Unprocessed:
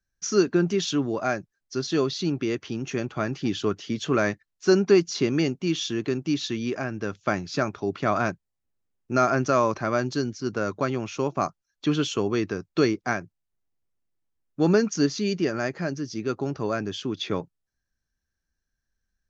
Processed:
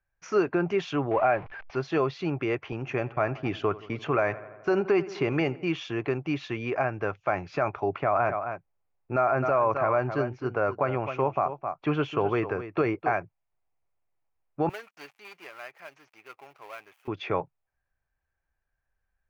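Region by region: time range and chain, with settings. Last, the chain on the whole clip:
1.11–1.76 s: jump at every zero crossing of -37.5 dBFS + low-pass 4 kHz 24 dB/octave + tape noise reduction on one side only encoder only
2.72–5.64 s: expander -36 dBFS + filtered feedback delay 85 ms, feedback 68%, low-pass 3.3 kHz, level -21 dB
7.98–13.13 s: treble shelf 3.9 kHz -8.5 dB + delay 261 ms -12.5 dB
14.69–17.08 s: dead-time distortion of 0.16 ms + differentiator
whole clip: FFT filter 140 Hz 0 dB, 210 Hz -10 dB, 780 Hz +10 dB, 1.7 kHz +1 dB, 2.4 kHz +5 dB, 3.7 kHz -13 dB, 7 kHz -20 dB; peak limiter -14.5 dBFS

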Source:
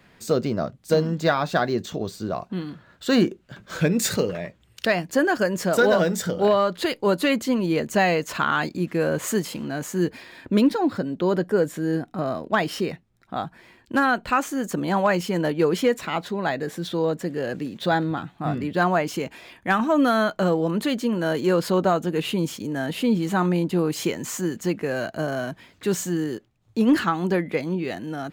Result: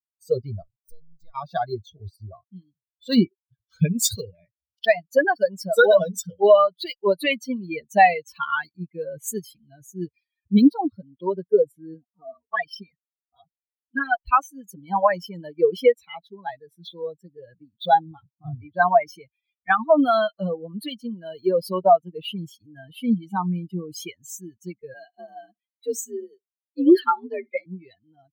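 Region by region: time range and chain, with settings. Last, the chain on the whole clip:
0.62–1.35 s: partial rectifier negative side -7 dB + compression 3:1, threshold -31 dBFS
11.94–14.24 s: comb 4.2 ms, depth 48% + flange 1.2 Hz, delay 0.3 ms, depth 3.2 ms, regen -19%
24.94–27.66 s: frequency shift +60 Hz + flutter echo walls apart 11 m, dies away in 0.3 s
whole clip: expander on every frequency bin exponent 3; dynamic bell 720 Hz, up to +6 dB, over -41 dBFS, Q 2.1; trim +7 dB

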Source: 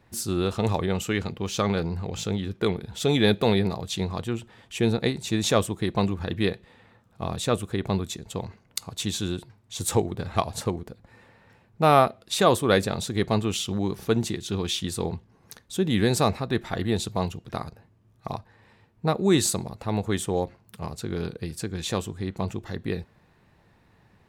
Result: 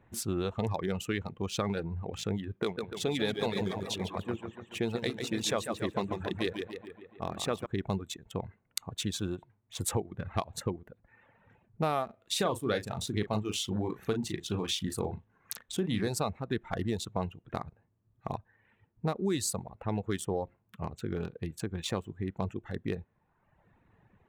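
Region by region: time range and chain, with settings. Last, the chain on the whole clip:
2.63–7.66 s: bass shelf 160 Hz -9.5 dB + modulated delay 142 ms, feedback 61%, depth 77 cents, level -5 dB
12.05–16.08 s: doubling 38 ms -6 dB + tape noise reduction on one side only encoder only
whole clip: local Wiener filter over 9 samples; reverb removal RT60 1 s; compression 4:1, threshold -25 dBFS; trim -2.5 dB

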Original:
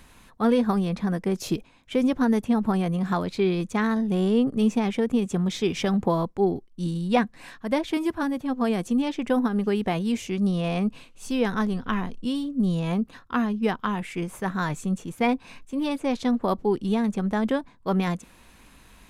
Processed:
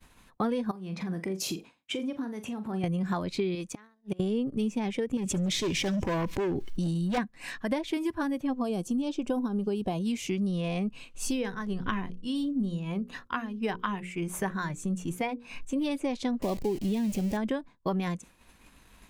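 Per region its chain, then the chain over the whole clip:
0.71–2.84 s: high-pass 130 Hz + compression, threshold -36 dBFS + flutter echo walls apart 7.2 m, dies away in 0.23 s
3.55–4.20 s: bass shelf 290 Hz -11 dB + inverted gate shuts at -23 dBFS, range -27 dB
5.17–7.18 s: hard clipper -24.5 dBFS + feedback echo behind a high-pass 71 ms, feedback 51%, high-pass 4.9 kHz, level -14.5 dB + level flattener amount 70%
8.59–10.06 s: peaking EQ 2 kHz -13.5 dB 0.65 oct + band-stop 2 kHz, Q 29
11.31–15.76 s: tremolo 1.6 Hz, depth 68% + hum notches 60/120/180/240/300/360/420/480/540 Hz
16.42–17.37 s: jump at every zero crossing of -28 dBFS + peaking EQ 1.3 kHz -10.5 dB 0.97 oct
whole clip: spectral noise reduction 7 dB; compression 5:1, threshold -37 dBFS; expander -52 dBFS; trim +8.5 dB

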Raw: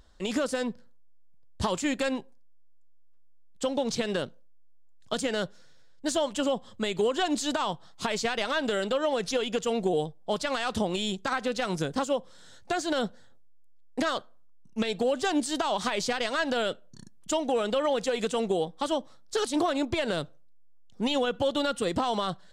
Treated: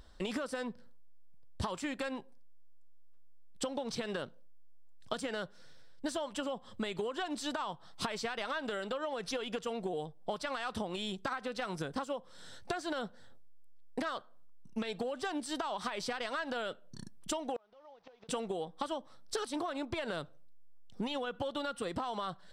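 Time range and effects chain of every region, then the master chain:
17.56–18.29 s: one-bit delta coder 32 kbps, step -33 dBFS + peaking EQ 820 Hz +12.5 dB 1.2 oct + inverted gate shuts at -17 dBFS, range -39 dB
whole clip: band-stop 6.8 kHz, Q 5.8; dynamic bell 1.2 kHz, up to +6 dB, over -42 dBFS, Q 0.92; compression 12:1, threshold -35 dBFS; trim +1.5 dB

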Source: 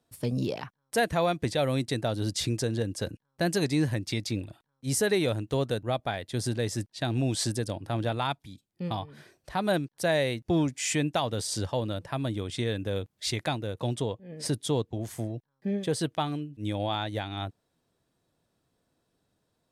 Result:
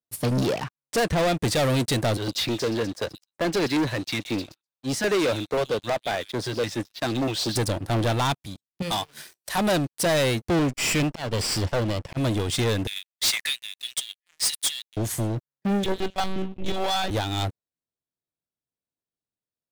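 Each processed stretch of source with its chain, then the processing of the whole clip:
0.53–1.37 s: self-modulated delay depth 0.089 ms + low-pass 6.9 kHz
2.17–7.56 s: three-band isolator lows -12 dB, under 240 Hz, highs -23 dB, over 4.2 kHz + repeats whose band climbs or falls 126 ms, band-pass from 4.2 kHz, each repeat 0.7 oct, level -7 dB + step-sequenced notch 9.4 Hz 260–7800 Hz
8.82–9.58 s: tilt EQ +3.5 dB/octave + hum notches 60/120/180/240/300/360/420/480/540 Hz
10.59–12.17 s: comb filter that takes the minimum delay 0.38 ms + slow attack 195 ms + distance through air 70 m
12.87–14.97 s: waveshaping leveller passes 1 + brick-wall FIR high-pass 1.7 kHz
15.84–17.11 s: de-hum 218.2 Hz, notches 37 + monotone LPC vocoder at 8 kHz 190 Hz
whole clip: treble shelf 4.4 kHz +6 dB; waveshaping leveller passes 5; upward expansion 1.5:1, over -35 dBFS; trim -4.5 dB

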